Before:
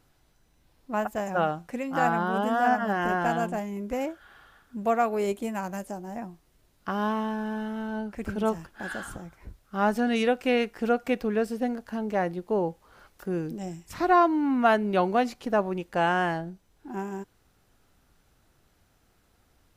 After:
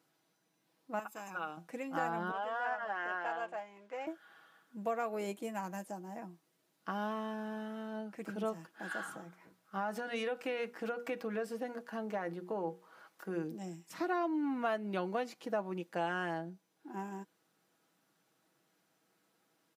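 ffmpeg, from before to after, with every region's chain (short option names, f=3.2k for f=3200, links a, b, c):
-filter_complex "[0:a]asettb=1/sr,asplit=3[a][b][c];[a]atrim=end=0.994[d];[b]atrim=start=0.99:end=1.57,asetpts=PTS-STARTPTS,afade=t=in:d=0.004:c=qsin,afade=t=out:st=0.576:d=0.004:c=qsin,aecho=1:1:0.8:0.63,atrim=end_sample=25578,acompressor=threshold=-27dB:ratio=2.5:attack=3.2:release=140:knee=1:detection=peak,highpass=f=770:p=1[e];[c]atrim=start=1.566[f];[d][e]acrossfade=d=0.004:c1=hsin:c2=qsin[g];[g][f]acrossfade=d=0.004:c1=qsin:c2=hsin,asettb=1/sr,asplit=3[h][i][j];[h]atrim=end=2.314[k];[i]atrim=start=2.31:end=4.07,asetpts=PTS-STARTPTS,afade=t=in:d=0.004:c=qsin,afade=t=out:st=1.756:d=0.004:c=qsin,acrusher=bits=8:mode=log:mix=0:aa=0.000001,highpass=630,lowpass=2.6k,aemphasis=mode=production:type=cd[l];[j]atrim=start=4.066[m];[k][l]acrossfade=d=0.004:c1=hsin:c2=qsin[n];[n][m]acrossfade=d=0.004:c1=qsin:c2=hsin,asettb=1/sr,asplit=3[o][p][q];[o]atrim=end=8.914[r];[p]atrim=start=8.91:end=13.44,asetpts=PTS-STARTPTS,afade=t=in:d=0.004:c=qsin,afade=t=out:st=4.526:d=0.004:c=qsin,equalizer=f=1.2k:t=o:w=1.8:g=5,acompressor=threshold=-23dB:ratio=6:attack=3.2:release=140:knee=1:detection=peak,bandreject=f=60:t=h:w=6,bandreject=f=120:t=h:w=6,bandreject=f=180:t=h:w=6,bandreject=f=240:t=h:w=6,bandreject=f=300:t=h:w=6,bandreject=f=360:t=h:w=6,bandreject=f=420:t=h:w=6,bandreject=f=480:t=h:w=6[s];[q]atrim=start=13.436[t];[r][s]acrossfade=d=0.004:c1=hsin:c2=qsin[u];[u][t]acrossfade=d=0.004:c1=qsin:c2=hsin,highpass=f=180:w=0.5412,highpass=f=180:w=1.3066,aecho=1:1:6.2:0.46,acompressor=threshold=-24dB:ratio=2.5,volume=-8dB"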